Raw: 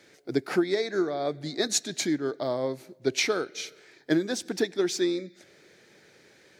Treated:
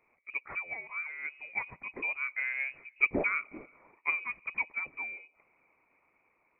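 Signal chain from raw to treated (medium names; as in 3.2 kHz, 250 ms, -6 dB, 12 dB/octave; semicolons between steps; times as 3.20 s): Doppler pass-by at 3.00 s, 6 m/s, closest 5.6 m; high-pass 120 Hz; frequency inversion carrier 2.7 kHz; harmonic-percussive split harmonic -6 dB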